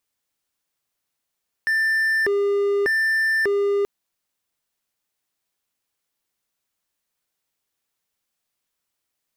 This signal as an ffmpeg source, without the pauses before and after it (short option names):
-f lavfi -i "aevalsrc='0.168*(1-4*abs(mod((1091.5*t+688.5/0.84*(0.5-abs(mod(0.84*t,1)-0.5)))+0.25,1)-0.5))':d=2.18:s=44100"